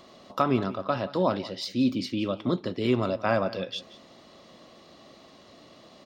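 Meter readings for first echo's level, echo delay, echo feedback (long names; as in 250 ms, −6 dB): −18.0 dB, 178 ms, 15%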